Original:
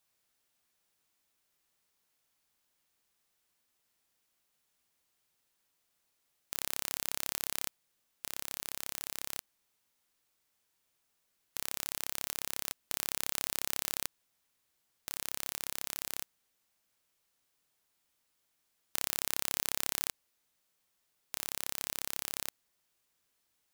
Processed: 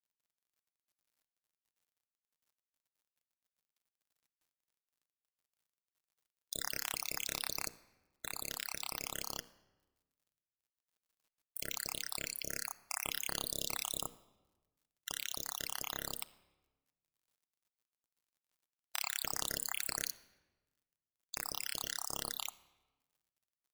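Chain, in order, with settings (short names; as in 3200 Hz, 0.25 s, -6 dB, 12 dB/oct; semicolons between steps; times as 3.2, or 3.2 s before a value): random spectral dropouts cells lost 63%; high shelf 9800 Hz -7 dB; in parallel at +1 dB: limiter -22 dBFS, peak gain reduction 9 dB; on the sum: notches 60/120/180/240/300/360/420/480 Hz; companded quantiser 6-bit; reverb RT60 1.2 s, pre-delay 6 ms, DRR 13.5 dB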